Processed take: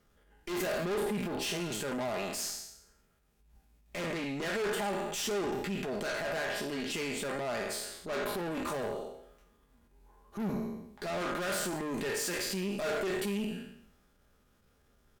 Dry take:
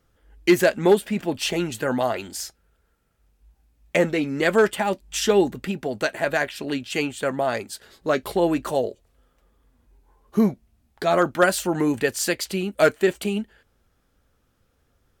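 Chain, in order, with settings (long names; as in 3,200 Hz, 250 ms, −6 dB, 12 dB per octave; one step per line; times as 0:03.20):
peak hold with a decay on every bin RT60 0.69 s
tube saturation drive 25 dB, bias 0.6
downward compressor, threshold −32 dBFS, peak gain reduction 7 dB
transient designer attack −8 dB, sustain +3 dB
mains-hum notches 50/100/150 Hz
comb filter 4.9 ms, depth 32%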